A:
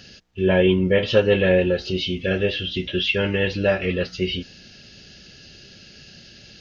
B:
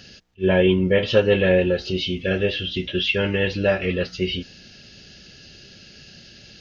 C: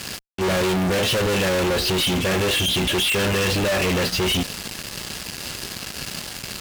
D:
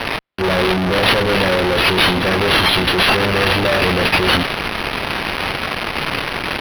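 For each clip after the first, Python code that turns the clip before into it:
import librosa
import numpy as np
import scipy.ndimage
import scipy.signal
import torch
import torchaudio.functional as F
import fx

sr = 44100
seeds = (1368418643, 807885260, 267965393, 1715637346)

y1 = fx.attack_slew(x, sr, db_per_s=460.0)
y2 = fx.leveller(y1, sr, passes=1)
y2 = fx.fuzz(y2, sr, gain_db=44.0, gate_db=-43.0)
y2 = y2 * 10.0 ** (-6.5 / 20.0)
y3 = fx.bass_treble(y2, sr, bass_db=-2, treble_db=13)
y3 = np.interp(np.arange(len(y3)), np.arange(len(y3))[::6], y3[::6])
y3 = y3 * 10.0 ** (4.0 / 20.0)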